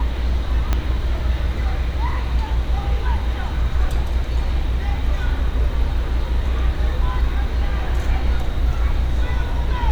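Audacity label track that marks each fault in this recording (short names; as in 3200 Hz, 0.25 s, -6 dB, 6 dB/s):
0.730000	0.730000	pop -6 dBFS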